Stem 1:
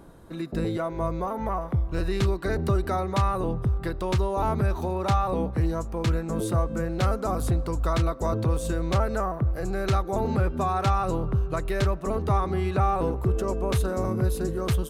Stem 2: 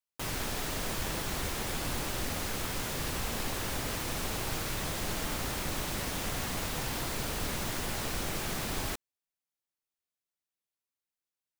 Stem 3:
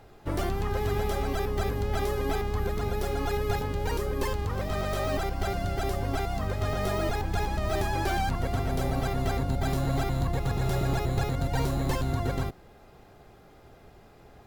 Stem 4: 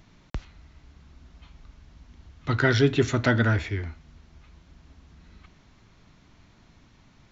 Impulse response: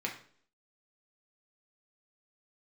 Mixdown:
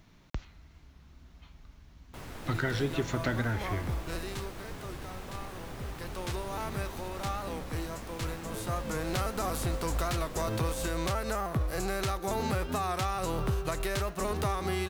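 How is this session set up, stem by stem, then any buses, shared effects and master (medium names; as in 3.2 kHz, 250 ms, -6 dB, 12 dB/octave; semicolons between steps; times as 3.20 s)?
4.02 s -8.5 dB -> 4.66 s -20 dB -> 5.62 s -20 dB -> 6.14 s -11.5 dB -> 8.53 s -11.5 dB -> 9.24 s -1 dB, 2.15 s, bus A, no send, formants flattened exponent 0.6
-7.0 dB, 1.95 s, no bus, no send, none
mute
-3.5 dB, 0.00 s, bus A, no send, none
bus A: 0.0 dB, treble shelf 2.8 kHz +11 dB; compression 5:1, threshold -26 dBFS, peak gain reduction 9 dB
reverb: none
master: bit crusher 11-bit; treble shelf 2.8 kHz -11 dB; warped record 45 rpm, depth 100 cents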